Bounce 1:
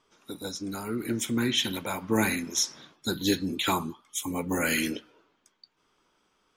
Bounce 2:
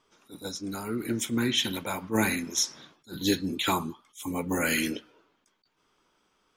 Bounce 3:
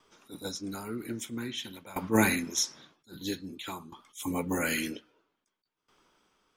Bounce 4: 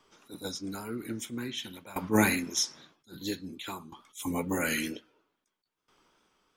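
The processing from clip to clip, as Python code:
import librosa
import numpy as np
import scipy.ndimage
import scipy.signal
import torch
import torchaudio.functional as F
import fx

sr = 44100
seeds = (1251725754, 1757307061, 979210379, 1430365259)

y1 = fx.attack_slew(x, sr, db_per_s=300.0)
y2 = fx.tremolo_decay(y1, sr, direction='decaying', hz=0.51, depth_db=19)
y2 = y2 * 10.0 ** (4.0 / 20.0)
y3 = fx.wow_flutter(y2, sr, seeds[0], rate_hz=2.1, depth_cents=46.0)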